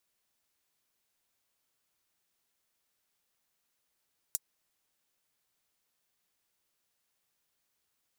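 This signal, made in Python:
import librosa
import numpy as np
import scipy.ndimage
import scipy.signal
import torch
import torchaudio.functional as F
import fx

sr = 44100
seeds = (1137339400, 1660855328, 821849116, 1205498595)

y = fx.drum_hat(sr, length_s=0.24, from_hz=7100.0, decay_s=0.04)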